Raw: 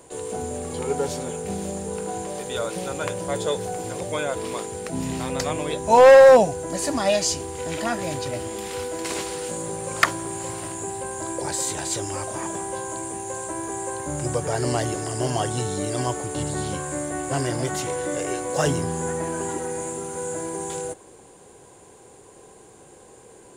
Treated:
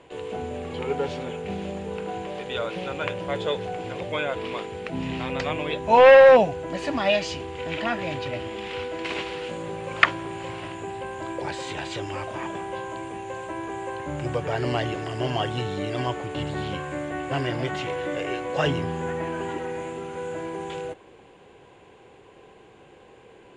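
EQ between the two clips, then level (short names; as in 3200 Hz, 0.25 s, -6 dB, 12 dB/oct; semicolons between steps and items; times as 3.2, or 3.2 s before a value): synth low-pass 2800 Hz, resonance Q 2.4; -2.0 dB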